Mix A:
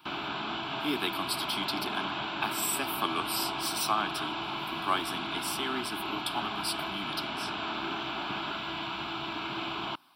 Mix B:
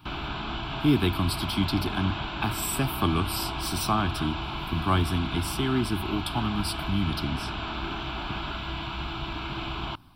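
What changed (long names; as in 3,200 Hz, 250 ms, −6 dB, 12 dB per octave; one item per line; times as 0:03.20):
speech: remove high-pass filter 800 Hz 6 dB per octave
master: remove high-pass filter 230 Hz 12 dB per octave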